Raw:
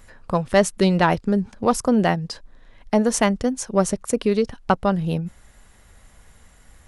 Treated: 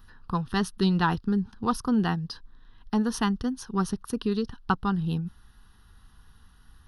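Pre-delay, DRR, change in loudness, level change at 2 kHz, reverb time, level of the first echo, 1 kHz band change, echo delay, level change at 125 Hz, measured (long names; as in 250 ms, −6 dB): no reverb audible, no reverb audible, −6.5 dB, −7.0 dB, no reverb audible, no echo audible, −6.5 dB, no echo audible, −4.0 dB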